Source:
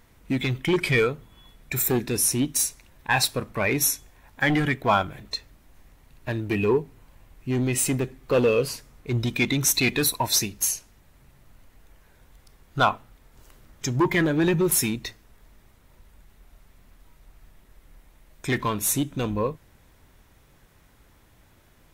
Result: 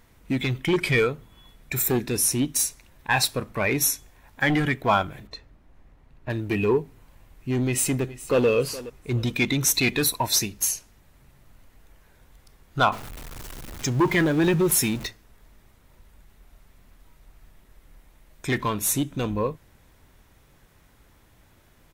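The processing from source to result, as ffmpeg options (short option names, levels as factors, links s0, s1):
-filter_complex "[0:a]asettb=1/sr,asplit=3[s0][s1][s2];[s0]atrim=end=5.274[s3];[s1]atrim=start=5.27:end=6.3,asetpts=PTS-STARTPTS,afade=t=in:d=0.004:c=qsin,afade=t=out:st=1.026:d=0.004:c=qsin,lowpass=f=1400:p=1[s4];[s2]atrim=start=6.296[s5];[s3][s4]acrossfade=d=0.004:c1=hsin:c2=qsin[s6];[s6][s5]acrossfade=d=0.004:c1=qsin:c2=hsin,asplit=2[s7][s8];[s8]afade=t=in:st=7.64:d=0.01,afade=t=out:st=8.47:d=0.01,aecho=0:1:420|840|1260:0.149624|0.0448871|0.0134661[s9];[s7][s9]amix=inputs=2:normalize=0,asettb=1/sr,asplit=3[s10][s11][s12];[s10]atrim=end=12.924[s13];[s11]atrim=start=12.92:end=15.07,asetpts=PTS-STARTPTS,afade=t=in:d=0.004:c=qsin,afade=t=out:st=2.146:d=0.004:c=qsin,aeval=exprs='val(0)+0.5*0.0211*sgn(val(0))':c=same[s14];[s12]atrim=start=15.066[s15];[s13][s14]acrossfade=d=0.004:c1=hsin:c2=qsin[s16];[s16][s15]acrossfade=d=0.004:c1=qsin:c2=hsin"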